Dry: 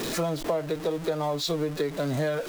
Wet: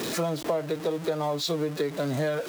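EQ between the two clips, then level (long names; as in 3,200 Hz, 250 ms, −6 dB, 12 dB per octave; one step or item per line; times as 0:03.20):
high-pass filter 99 Hz
0.0 dB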